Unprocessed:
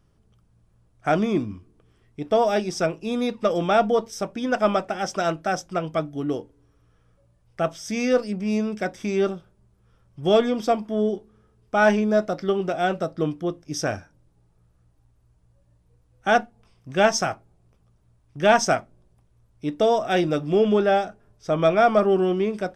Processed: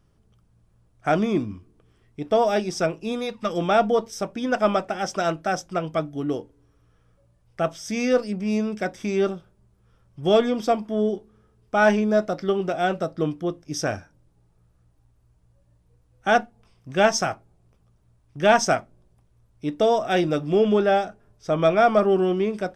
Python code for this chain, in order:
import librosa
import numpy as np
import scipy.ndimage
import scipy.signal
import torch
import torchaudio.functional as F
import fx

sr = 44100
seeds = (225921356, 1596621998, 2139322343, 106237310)

y = fx.peak_eq(x, sr, hz=fx.line((3.11, 140.0), (3.56, 680.0)), db=-11.5, octaves=0.79, at=(3.11, 3.56), fade=0.02)